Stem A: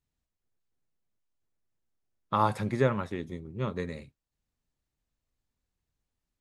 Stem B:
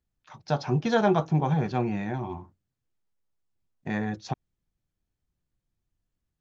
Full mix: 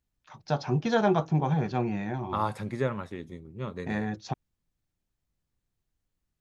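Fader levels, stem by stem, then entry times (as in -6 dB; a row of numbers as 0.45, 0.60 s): -3.5, -1.5 dB; 0.00, 0.00 s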